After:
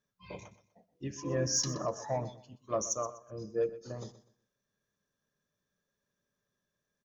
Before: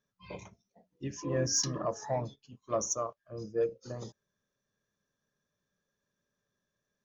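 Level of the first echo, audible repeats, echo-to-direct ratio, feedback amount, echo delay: -15.5 dB, 2, -15.0 dB, 27%, 124 ms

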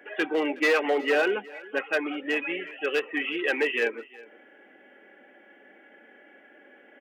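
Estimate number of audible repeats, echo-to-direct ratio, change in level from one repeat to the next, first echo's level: 1, -21.5 dB, no regular repeats, -21.5 dB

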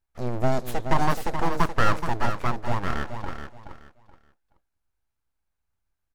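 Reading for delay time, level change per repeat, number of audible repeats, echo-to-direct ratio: 426 ms, -12.5 dB, 3, -8.0 dB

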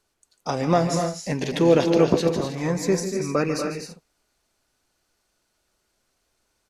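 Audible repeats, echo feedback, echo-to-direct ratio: 3, no regular repeats, -4.0 dB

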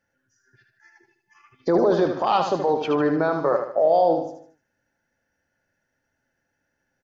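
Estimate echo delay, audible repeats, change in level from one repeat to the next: 76 ms, 4, -7.5 dB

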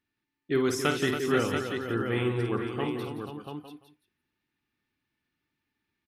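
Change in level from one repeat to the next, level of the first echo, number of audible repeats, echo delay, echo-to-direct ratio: no regular repeats, -7.5 dB, 9, 51 ms, -1.0 dB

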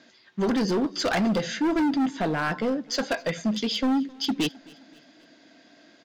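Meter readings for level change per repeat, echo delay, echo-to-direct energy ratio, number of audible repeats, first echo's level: -6.5 dB, 262 ms, -23.0 dB, 2, -24.0 dB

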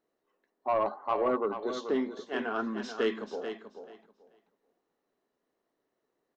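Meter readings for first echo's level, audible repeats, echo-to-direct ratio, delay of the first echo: -9.0 dB, 2, -9.0 dB, 435 ms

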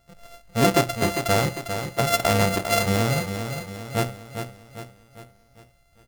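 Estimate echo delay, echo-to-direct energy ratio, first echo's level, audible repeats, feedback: 401 ms, -7.0 dB, -8.0 dB, 5, 48%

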